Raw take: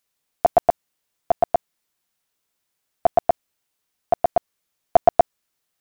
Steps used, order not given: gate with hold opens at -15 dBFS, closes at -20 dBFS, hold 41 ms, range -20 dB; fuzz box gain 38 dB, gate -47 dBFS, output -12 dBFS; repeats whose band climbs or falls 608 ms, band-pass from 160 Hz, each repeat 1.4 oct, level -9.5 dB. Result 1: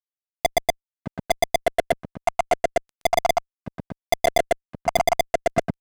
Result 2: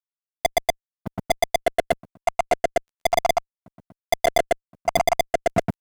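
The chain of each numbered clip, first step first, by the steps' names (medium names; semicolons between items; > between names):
gate with hold > repeats whose band climbs or falls > fuzz box; repeats whose band climbs or falls > fuzz box > gate with hold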